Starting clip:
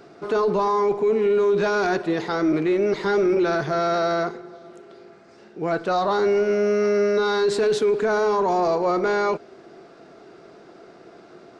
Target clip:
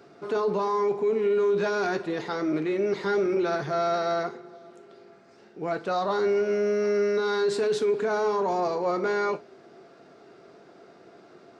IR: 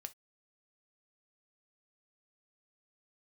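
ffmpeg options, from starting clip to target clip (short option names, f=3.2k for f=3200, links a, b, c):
-filter_complex "[0:a]highpass=76[a];[1:a]atrim=start_sample=2205[b];[a][b]afir=irnorm=-1:irlink=0"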